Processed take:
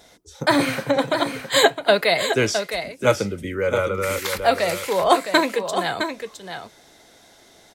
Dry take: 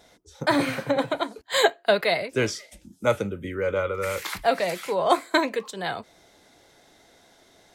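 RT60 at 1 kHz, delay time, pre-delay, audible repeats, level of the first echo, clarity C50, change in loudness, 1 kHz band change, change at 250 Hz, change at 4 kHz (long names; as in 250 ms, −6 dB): no reverb audible, 662 ms, no reverb audible, 1, −8.0 dB, no reverb audible, +4.5 dB, +4.5 dB, +4.0 dB, +6.0 dB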